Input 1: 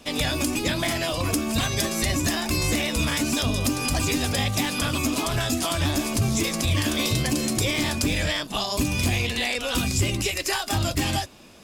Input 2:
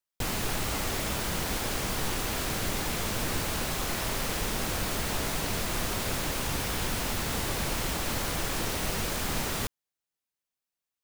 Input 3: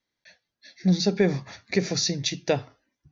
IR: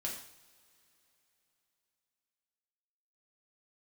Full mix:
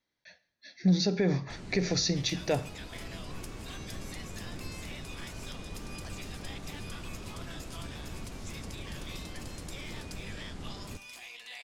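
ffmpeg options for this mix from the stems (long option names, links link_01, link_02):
-filter_complex "[0:a]highpass=910,adelay=2100,volume=-17.5dB[link_01];[1:a]lowpass=frequency=9000:width=0.5412,lowpass=frequency=9000:width=1.3066,acrossover=split=420[link_02][link_03];[link_03]acompressor=threshold=-43dB:ratio=6[link_04];[link_02][link_04]amix=inputs=2:normalize=0,adelay=1300,volume=-9dB,asplit=2[link_05][link_06];[link_06]volume=-13dB[link_07];[2:a]alimiter=limit=-16.5dB:level=0:latency=1:release=53,volume=-2dB,asplit=3[link_08][link_09][link_10];[link_09]volume=-11.5dB[link_11];[link_10]apad=whole_len=543958[link_12];[link_05][link_12]sidechaincompress=threshold=-31dB:ratio=8:attack=16:release=765[link_13];[3:a]atrim=start_sample=2205[link_14];[link_07][link_11]amix=inputs=2:normalize=0[link_15];[link_15][link_14]afir=irnorm=-1:irlink=0[link_16];[link_01][link_13][link_08][link_16]amix=inputs=4:normalize=0,highshelf=frequency=6000:gain=-5.5"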